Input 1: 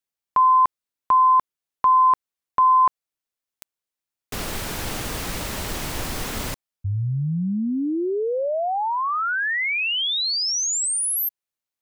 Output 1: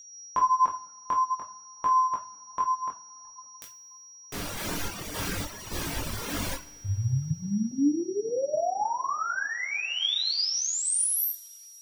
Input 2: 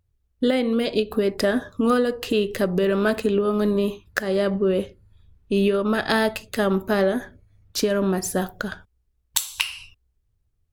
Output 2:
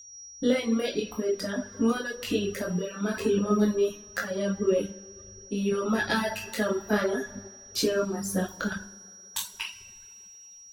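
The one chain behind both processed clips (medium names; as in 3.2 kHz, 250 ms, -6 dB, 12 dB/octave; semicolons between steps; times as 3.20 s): bucket-brigade echo 187 ms, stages 2048, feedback 44%, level -19 dB; in parallel at 0 dB: compression, threshold -28 dBFS; on the sum: feedback comb 99 Hz, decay 1.8 s, mix 70%; random-step tremolo; chorus 0.51 Hz, delay 17.5 ms, depth 6.5 ms; whistle 5.7 kHz -49 dBFS; two-slope reverb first 0.5 s, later 3.5 s, from -19 dB, DRR -1 dB; reverb removal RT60 1.5 s; trim +4.5 dB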